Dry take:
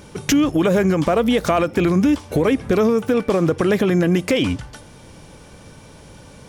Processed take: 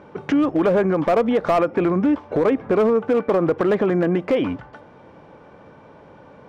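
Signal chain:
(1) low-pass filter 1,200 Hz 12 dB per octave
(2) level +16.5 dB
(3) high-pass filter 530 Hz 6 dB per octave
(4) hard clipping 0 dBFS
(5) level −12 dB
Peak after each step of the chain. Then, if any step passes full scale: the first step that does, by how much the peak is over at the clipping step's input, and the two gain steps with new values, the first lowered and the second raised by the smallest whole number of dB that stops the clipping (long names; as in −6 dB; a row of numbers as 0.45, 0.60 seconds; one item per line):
−6.5, +10.0, +7.0, 0.0, −12.0 dBFS
step 2, 7.0 dB
step 2 +9.5 dB, step 5 −5 dB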